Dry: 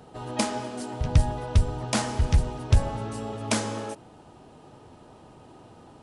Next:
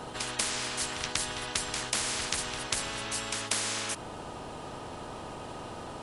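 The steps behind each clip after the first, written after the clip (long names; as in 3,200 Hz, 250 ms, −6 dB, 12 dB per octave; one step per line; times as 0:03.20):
echo ahead of the sound 190 ms −19 dB
every bin compressed towards the loudest bin 10 to 1
level −2 dB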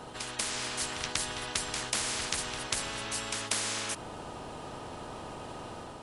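automatic gain control gain up to 3 dB
level −4 dB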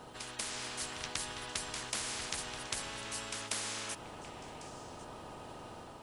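bit-depth reduction 12 bits, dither triangular
echo through a band-pass that steps 366 ms, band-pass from 890 Hz, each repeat 1.4 octaves, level −9 dB
level −6 dB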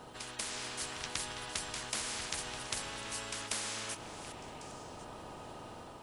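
delay that plays each chunk backwards 393 ms, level −12.5 dB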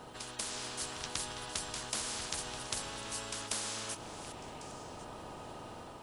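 dynamic equaliser 2,100 Hz, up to −5 dB, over −55 dBFS, Q 1.6
level +1 dB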